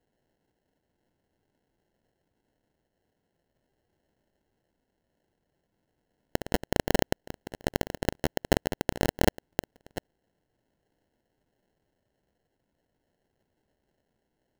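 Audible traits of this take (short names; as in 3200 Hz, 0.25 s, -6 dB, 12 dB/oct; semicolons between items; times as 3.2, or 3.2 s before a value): phasing stages 4, 0.42 Hz, lowest notch 800–4300 Hz; aliases and images of a low sample rate 1200 Hz, jitter 0%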